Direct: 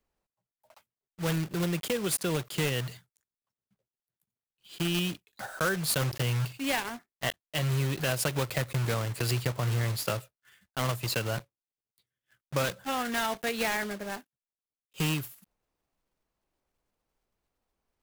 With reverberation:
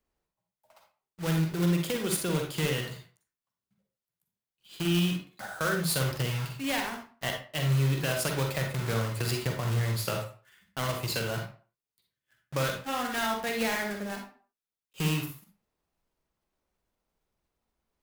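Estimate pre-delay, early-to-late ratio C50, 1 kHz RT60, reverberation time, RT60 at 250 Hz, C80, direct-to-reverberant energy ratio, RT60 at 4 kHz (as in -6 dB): 40 ms, 4.5 dB, 0.40 s, 0.40 s, 0.35 s, 10.5 dB, 2.5 dB, 0.30 s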